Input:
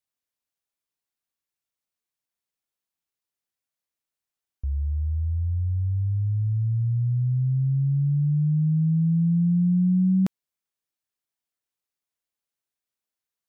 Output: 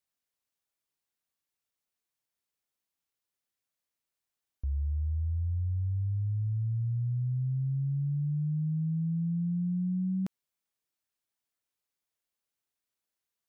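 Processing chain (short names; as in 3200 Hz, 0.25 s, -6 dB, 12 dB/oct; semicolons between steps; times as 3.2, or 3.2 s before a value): limiter -27 dBFS, peak gain reduction 10.5 dB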